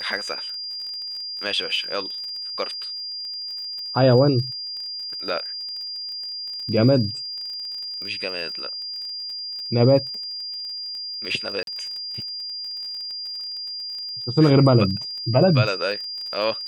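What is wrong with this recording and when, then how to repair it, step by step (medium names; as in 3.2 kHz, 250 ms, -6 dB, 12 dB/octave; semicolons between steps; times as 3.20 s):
crackle 28 per s -32 dBFS
whine 4.8 kHz -29 dBFS
11.63–11.67 s: dropout 42 ms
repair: de-click; band-stop 4.8 kHz, Q 30; interpolate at 11.63 s, 42 ms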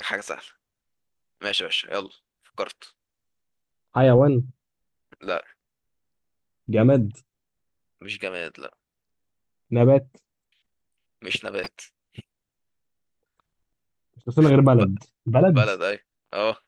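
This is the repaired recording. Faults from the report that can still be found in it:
nothing left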